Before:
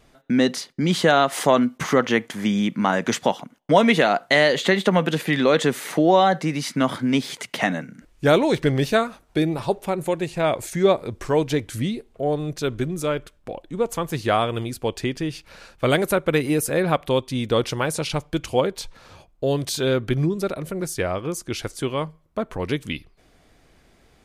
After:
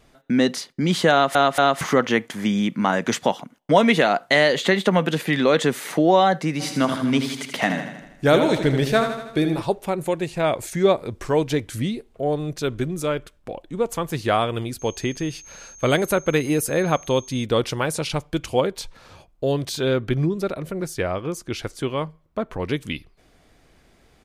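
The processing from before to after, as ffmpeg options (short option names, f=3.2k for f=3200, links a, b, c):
-filter_complex "[0:a]asplit=3[a][b][c];[a]afade=t=out:st=6.59:d=0.02[d];[b]aecho=1:1:80|160|240|320|400|480|560:0.398|0.223|0.125|0.0699|0.0392|0.0219|0.0123,afade=t=in:st=6.59:d=0.02,afade=t=out:st=9.6:d=0.02[e];[c]afade=t=in:st=9.6:d=0.02[f];[d][e][f]amix=inputs=3:normalize=0,asettb=1/sr,asplit=3[g][h][i];[g]atrim=end=14.794[j];[h]atrim=start=14.79:end=17.44,asetpts=PTS-STARTPTS,afade=t=in:d=0.004:c=qsin,afade=t=out:st=2.646:d=0.004:c=qsin,aeval=exprs='val(0)+0.00794*sin(2*PI*6400*n/s)':c=same[k];[i]atrim=start=17.436[l];[j][k]acrossfade=d=0.004:c1=hsin:c2=qsin[m];[m][l]acrossfade=d=0.004:c1=qsin:c2=hsin,asettb=1/sr,asplit=3[n][o][p];[n]atrim=end=19.514[q];[o]atrim=start=19.51:end=22.74,asetpts=PTS-STARTPTS,afade=t=in:d=0.004:c=qsin,afade=t=out:st=3.226:d=0.004:c=qsin,equalizer=f=10k:w=0.62:g=-5.5[r];[p]atrim=start=22.736[s];[q][r]acrossfade=d=0.004:c1=hsin:c2=qsin[t];[t][s]acrossfade=d=0.004:c1=qsin:c2=hsin,asplit=4[u][v][w][x];[u]atrim=end=1.352[y];[v]atrim=start=1.118:end=1.352[z];[w]atrim=start=1.118:end=1.352[aa];[x]atrim=start=1.808[ab];[y][z]acrossfade=d=0.004:c1=hsin:c2=hsin[ac];[ac][aa]acrossfade=d=0.004:c1=hsin:c2=hsin[ad];[ad][ab]acrossfade=d=0.004:c1=hsin:c2=hsin"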